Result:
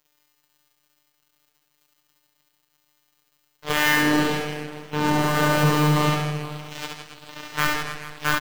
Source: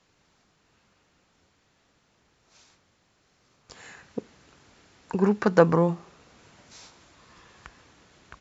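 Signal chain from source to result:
peak hold with a rise ahead of every peak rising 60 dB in 0.50 s
Chebyshev low-pass filter 3,500 Hz, order 8
noise gate −50 dBFS, range −8 dB
reversed playback
downward compressor 6 to 1, threshold −38 dBFS, peak gain reduction 24.5 dB
reversed playback
fuzz pedal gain 54 dB, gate −56 dBFS
bit reduction 8 bits
surface crackle 170 per second −45 dBFS
phases set to zero 150 Hz
on a send: reverse bouncing-ball delay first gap 70 ms, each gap 1.3×, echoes 5
on the sum: feedback echo with a swinging delay time 125 ms, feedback 70%, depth 150 cents, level −20.5 dB
level −2.5 dB

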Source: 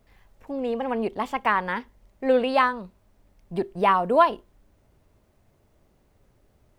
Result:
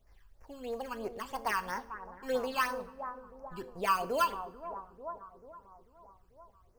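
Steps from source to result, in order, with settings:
parametric band 230 Hz −14 dB 2.5 octaves
in parallel at −7 dB: sample-rate reduction 3,700 Hz, jitter 0%
on the sum: bucket-brigade delay 441 ms, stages 4,096, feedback 56%, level −11 dB
all-pass phaser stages 12, 3 Hz, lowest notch 620–3,500 Hz
coupled-rooms reverb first 0.52 s, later 1.5 s, from −16 dB, DRR 13 dB
level −5 dB

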